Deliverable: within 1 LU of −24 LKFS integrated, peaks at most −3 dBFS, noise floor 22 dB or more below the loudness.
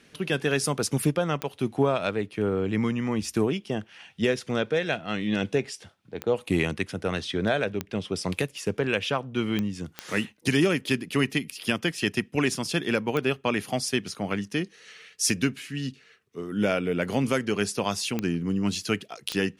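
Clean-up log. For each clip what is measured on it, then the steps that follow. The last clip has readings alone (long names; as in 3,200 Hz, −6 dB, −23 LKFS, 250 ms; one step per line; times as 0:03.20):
number of clicks 8; integrated loudness −27.5 LKFS; sample peak −9.5 dBFS; target loudness −24.0 LKFS
→ click removal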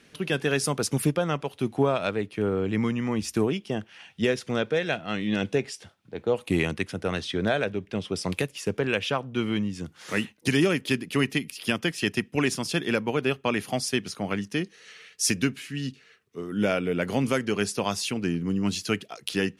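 number of clicks 0; integrated loudness −27.5 LKFS; sample peak −9.5 dBFS; target loudness −24.0 LKFS
→ level +3.5 dB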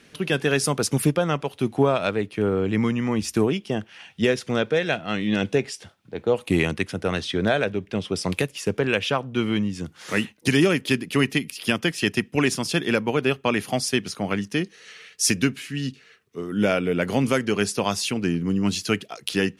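integrated loudness −24.0 LKFS; sample peak −6.0 dBFS; background noise floor −55 dBFS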